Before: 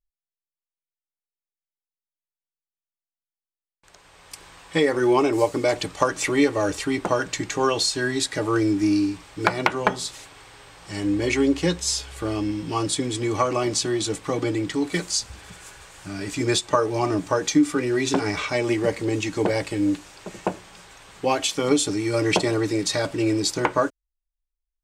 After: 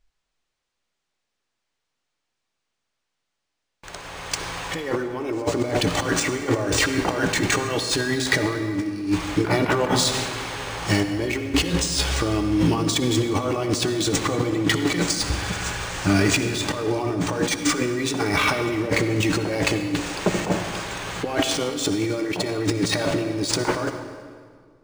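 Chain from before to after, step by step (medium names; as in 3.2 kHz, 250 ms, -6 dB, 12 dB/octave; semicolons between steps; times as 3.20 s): compressor with a negative ratio -32 dBFS, ratio -1; reverberation RT60 1.9 s, pre-delay 54 ms, DRR 7.5 dB; decimation joined by straight lines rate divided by 3×; trim +8 dB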